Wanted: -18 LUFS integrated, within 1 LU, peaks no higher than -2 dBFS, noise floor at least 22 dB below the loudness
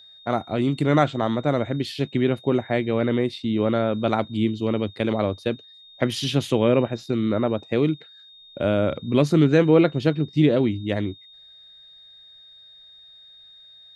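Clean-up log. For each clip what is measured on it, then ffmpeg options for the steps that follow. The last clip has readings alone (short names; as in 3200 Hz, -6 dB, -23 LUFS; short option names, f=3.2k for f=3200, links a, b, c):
steady tone 3700 Hz; tone level -46 dBFS; loudness -22.5 LUFS; peak -4.0 dBFS; loudness target -18.0 LUFS
-> -af "bandreject=f=3.7k:w=30"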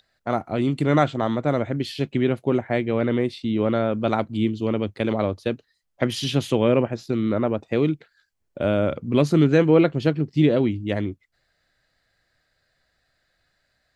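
steady tone none; loudness -22.5 LUFS; peak -4.0 dBFS; loudness target -18.0 LUFS
-> -af "volume=4.5dB,alimiter=limit=-2dB:level=0:latency=1"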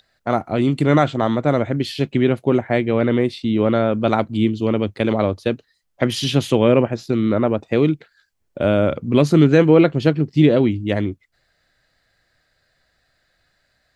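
loudness -18.5 LUFS; peak -2.0 dBFS; noise floor -67 dBFS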